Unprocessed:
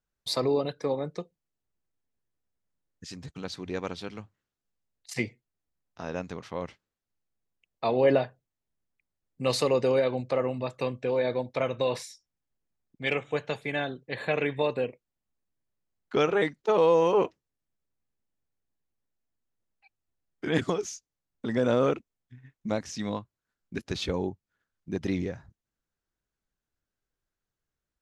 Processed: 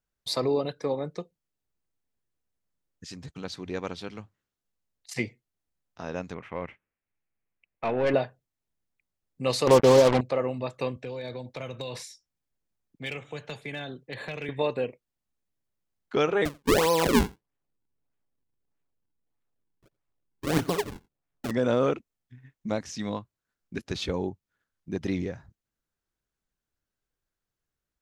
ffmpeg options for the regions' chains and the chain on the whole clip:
ffmpeg -i in.wav -filter_complex "[0:a]asettb=1/sr,asplit=3[link_01][link_02][link_03];[link_01]atrim=end=6.344[link_04];[link_02]atrim=start=6.34:end=8.14,asetpts=PTS-STARTPTS,afade=type=in:duration=0.004:curve=qsin,afade=type=out:start_time=1.796:duration=0.004:curve=qsin,highshelf=frequency=3300:width_type=q:width=3:gain=-12,aeval=exprs='(tanh(10*val(0)+0.35)-tanh(0.35))/10':channel_layout=same[link_05];[link_03]atrim=start=8.136[link_06];[link_04][link_05]acrossfade=duration=0.004:curve1=hsin:curve2=qsin[link_07];[link_07][link_06]acrossfade=duration=0.004:curve1=qsin:curve2=hsin,asettb=1/sr,asplit=3[link_08][link_09][link_10];[link_08]atrim=end=9.674[link_11];[link_09]atrim=start=9.67:end=10.21,asetpts=PTS-STARTPTS,afade=type=in:duration=0.004:curve=qsin,afade=type=out:start_time=0.536:duration=0.004:curve=qsin,lowpass=frequency=1000:width_type=q:width=4.4,lowshelf=frequency=440:gain=9.5,acrusher=bits=3:mix=0:aa=0.5[link_12];[link_10]atrim=start=10.206[link_13];[link_11][link_12]acrossfade=duration=0.004:curve1=hsin:curve2=qsin[link_14];[link_14][link_13]acrossfade=duration=0.004:curve1=qsin:curve2=hsin,asettb=1/sr,asplit=3[link_15][link_16][link_17];[link_15]atrim=end=10.964[link_18];[link_16]atrim=start=10.96:end=14.49,asetpts=PTS-STARTPTS,afade=type=in:duration=0.004:curve=qsin,afade=type=out:start_time=3.526:duration=0.004:curve=qsin,acrossover=split=160|3000[link_19][link_20][link_21];[link_20]acompressor=threshold=-34dB:ratio=8:attack=3.2:release=140:knee=2.83:detection=peak[link_22];[link_19][link_22][link_21]amix=inputs=3:normalize=0,volume=27dB,asoftclip=hard,volume=-27dB[link_23];[link_17]atrim=start=14.486[link_24];[link_18][link_23]acrossfade=duration=0.004:curve1=hsin:curve2=qsin[link_25];[link_25][link_24]acrossfade=duration=0.004:curve1=qsin:curve2=hsin,asettb=1/sr,asplit=3[link_26][link_27][link_28];[link_26]atrim=end=16.454[link_29];[link_27]atrim=start=16.45:end=21.51,asetpts=PTS-STARTPTS,afade=type=in:duration=0.004:curve=qsin,afade=type=out:start_time=5.056:duration=0.004:curve=qsin,aecho=1:1:7.1:0.41,atrim=end_sample=223146,acrusher=samples=41:mix=1:aa=0.000001:lfo=1:lforange=65.6:lforate=1.6,aecho=1:1:87:0.0708,atrim=end_sample=223146[link_30];[link_28]atrim=start=21.506[link_31];[link_29][link_30]acrossfade=duration=0.004:curve1=hsin:curve2=qsin[link_32];[link_32][link_31]acrossfade=duration=0.004:curve1=qsin:curve2=hsin" out.wav

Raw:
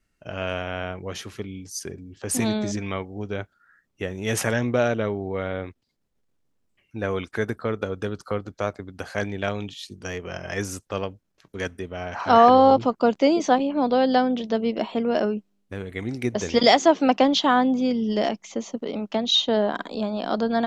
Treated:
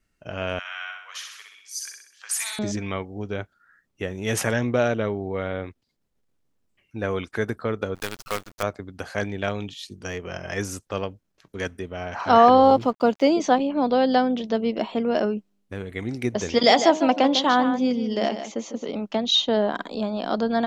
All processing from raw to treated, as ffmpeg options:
ffmpeg -i in.wav -filter_complex "[0:a]asettb=1/sr,asplit=3[link_01][link_02][link_03];[link_01]atrim=end=0.594[link_04];[link_02]atrim=start=0.59:end=2.59,asetpts=PTS-STARTPTS,afade=type=in:duration=0.004:curve=qsin,afade=type=out:start_time=1.996:duration=0.004:curve=qsin,highpass=frequency=1200:width=0.5412,highpass=frequency=1200:width=1.3066,aecho=1:1:63|126|189|252|315|378|441:0.631|0.328|0.171|0.0887|0.0461|0.024|0.0125,atrim=end_sample=88200[link_05];[link_03]atrim=start=2.586[link_06];[link_04][link_05]acrossfade=duration=0.004:curve1=hsin:curve2=qsin[link_07];[link_07][link_06]acrossfade=duration=0.004:curve1=qsin:curve2=hsin,asettb=1/sr,asplit=3[link_08][link_09][link_10];[link_08]atrim=end=7.954[link_11];[link_09]atrim=start=7.95:end=8.63,asetpts=PTS-STARTPTS,afade=type=in:duration=0.004:curve=qsin,afade=type=out:start_time=0.676:duration=0.004:curve=qsin,highpass=58,tiltshelf=frequency=770:gain=-8,acrusher=bits=5:dc=4:mix=0:aa=0.000001[link_12];[link_10]atrim=start=8.626[link_13];[link_11][link_12]acrossfade=duration=0.004:curve1=hsin:curve2=qsin[link_14];[link_14][link_13]acrossfade=duration=0.004:curve1=qsin:curve2=hsin,asettb=1/sr,asplit=3[link_15][link_16][link_17];[link_15]atrim=end=12.634[link_18];[link_16]atrim=start=12.63:end=13.3,asetpts=PTS-STARTPTS,afade=type=in:duration=0.004:curve=qsin,afade=type=out:start_time=0.666:duration=0.004:curve=qsin,highpass=44,aeval=exprs='sgn(val(0))*max(abs(val(0))-0.00316,0)':channel_layout=same[link_19];[link_17]atrim=start=13.296[link_20];[link_18][link_19]acrossfade=duration=0.004:curve1=hsin:curve2=qsin[link_21];[link_21][link_20]acrossfade=duration=0.004:curve1=qsin:curve2=hsin,asettb=1/sr,asplit=3[link_22][link_23][link_24];[link_22]atrim=end=16.544[link_25];[link_23]atrim=start=16.54:end=18.89,asetpts=PTS-STARTPTS,afade=type=in:duration=0.004:curve=qsin,afade=type=out:start_time=2.346:duration=0.004:curve=qsin,lowshelf=frequency=89:gain=-10.5,bandreject=frequency=104.4:width_type=h:width=4,bandreject=frequency=208.8:width_type=h:width=4,bandreject=frequency=313.2:width_type=h:width=4,bandreject=frequency=417.6:width_type=h:width=4,bandreject=frequency=522:width_type=h:width=4,bandreject=frequency=626.4:width_type=h:width=4,bandreject=frequency=730.8:width_type=h:width=4,bandreject=frequency=835.2:width_type=h:width=4,bandreject=frequency=939.6:width_type=h:width=4,bandreject=frequency=1044:width_type=h:width=4,bandreject=frequency=1148.4:width_type=h:width=4,aecho=1:1:150:0.316,atrim=end_sample=103635[link_26];[link_24]atrim=start=18.886[link_27];[link_25][link_26]acrossfade=duration=0.004:curve1=hsin:curve2=qsin[link_28];[link_28][link_27]acrossfade=duration=0.004:curve1=qsin:curve2=hsin" out.wav

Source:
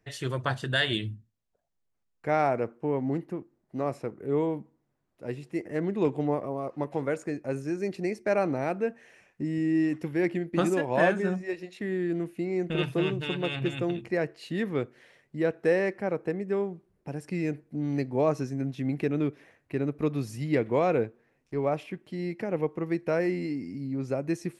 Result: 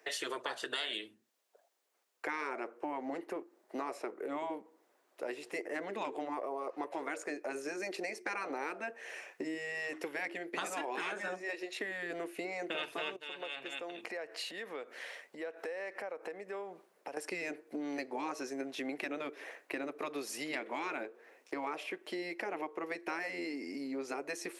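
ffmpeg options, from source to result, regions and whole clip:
ffmpeg -i in.wav -filter_complex "[0:a]asettb=1/sr,asplit=3[link_01][link_02][link_03];[link_01]atrim=end=13.164[link_04];[link_02]atrim=start=13.16:end=17.17,asetpts=PTS-STARTPTS,afade=type=in:duration=0.004:curve=qsin,afade=type=out:start_time=4.006:duration=0.004:curve=qsin,equalizer=frequency=370:width_type=o:width=0.44:gain=-9.5,acompressor=threshold=-45dB:ratio=6:attack=3.2:release=140:knee=1:detection=peak[link_05];[link_03]atrim=start=17.166[link_06];[link_04][link_05]acrossfade=duration=0.004:curve1=hsin:curve2=qsin[link_07];[link_07][link_06]acrossfade=duration=0.004:curve1=qsin:curve2=hsin,highpass=frequency=390:width=0.5412,highpass=frequency=390:width=1.3066,afftfilt=real='re*lt(hypot(re,im),0.141)':imag='im*lt(hypot(re,im),0.141)':win_size=1024:overlap=0.75,acompressor=threshold=-50dB:ratio=4,volume=12dB" out.wav

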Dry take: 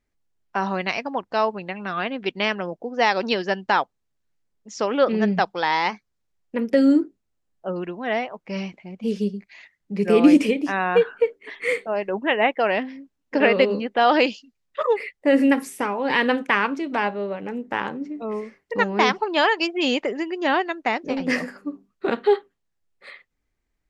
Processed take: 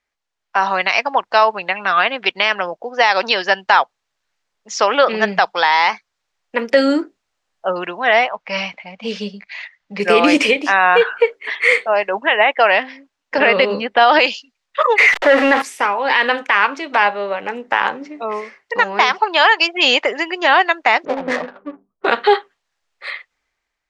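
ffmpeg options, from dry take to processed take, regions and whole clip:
ffmpeg -i in.wav -filter_complex "[0:a]asettb=1/sr,asplit=3[link_01][link_02][link_03];[link_01]atrim=end=8.294[link_04];[link_02]atrim=start=8.29:end=10,asetpts=PTS-STARTPTS,afade=type=in:duration=0.004:curve=qsin,afade=type=out:start_time=1.706:duration=0.004:curve=qsin,lowpass=5500,equalizer=frequency=370:width_type=o:width=0.31:gain=-13[link_05];[link_03]atrim=start=9.996[link_06];[link_04][link_05]acrossfade=duration=0.004:curve1=hsin:curve2=qsin[link_07];[link_07][link_06]acrossfade=duration=0.004:curve1=qsin:curve2=hsin,asettb=1/sr,asplit=3[link_08][link_09][link_10];[link_08]atrim=end=13.384[link_11];[link_09]atrim=start=13.38:end=14.19,asetpts=PTS-STARTPTS,afade=type=in:duration=0.004:curve=qsin,afade=type=out:start_time=0.806:duration=0.004:curve=qsin,equalizer=frequency=90:width_type=o:width=2.4:gain=15,bandreject=frequency=6600:width=8.8[link_12];[link_10]atrim=start=14.186[link_13];[link_11][link_12]acrossfade=duration=0.004:curve1=hsin:curve2=qsin[link_14];[link_14][link_13]acrossfade=duration=0.004:curve1=qsin:curve2=hsin,asettb=1/sr,asplit=3[link_15][link_16][link_17];[link_15]atrim=end=14.984[link_18];[link_16]atrim=start=14.98:end=15.62,asetpts=PTS-STARTPTS,afade=type=in:duration=0.004:curve=qsin,afade=type=out:start_time=0.636:duration=0.004:curve=qsin,aeval=exprs='val(0)+0.5*0.0596*sgn(val(0))':channel_layout=same,bass=frequency=250:gain=-8,treble=frequency=4000:gain=-15,acontrast=89[link_19];[link_17]atrim=start=15.616[link_20];[link_18][link_19]acrossfade=duration=0.004:curve1=hsin:curve2=qsin[link_21];[link_21][link_20]acrossfade=duration=0.004:curve1=qsin:curve2=hsin,asettb=1/sr,asplit=3[link_22][link_23][link_24];[link_22]atrim=end=21.054[link_25];[link_23]atrim=start=21.05:end=22.05,asetpts=PTS-STARTPTS,afade=type=in:duration=0.004:curve=qsin,afade=type=out:start_time=0.996:duration=0.004:curve=qsin,lowpass=1000,adynamicsmooth=sensitivity=7:basefreq=570[link_26];[link_24]atrim=start=22.046[link_27];[link_25][link_26]acrossfade=duration=0.004:curve1=hsin:curve2=qsin[link_28];[link_28][link_27]acrossfade=duration=0.004:curve1=qsin:curve2=hsin,acrossover=split=600 7400:gain=0.112 1 0.158[link_29][link_30][link_31];[link_29][link_30][link_31]amix=inputs=3:normalize=0,dynaudnorm=framelen=180:gausssize=7:maxgain=8.5dB,alimiter=level_in=8dB:limit=-1dB:release=50:level=0:latency=1,volume=-1dB" out.wav

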